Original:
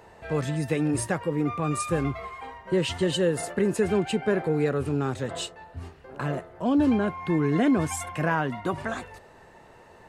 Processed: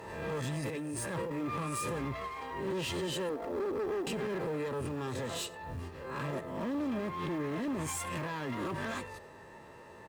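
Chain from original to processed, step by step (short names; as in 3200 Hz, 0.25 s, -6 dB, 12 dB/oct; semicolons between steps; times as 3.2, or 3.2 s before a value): spectral swells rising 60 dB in 0.39 s; 0.61–1.32 negative-ratio compressor -32 dBFS, ratio -1; 3.29–4.07 Chebyshev band-pass 240–930 Hz, order 5; limiter -21.5 dBFS, peak gain reduction 10.5 dB; one-sided clip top -36 dBFS, bottom -27 dBFS; short-mantissa float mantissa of 4-bit; notch comb 740 Hz; outdoor echo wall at 16 m, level -22 dB; backwards sustainer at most 42 dB/s; gain -1 dB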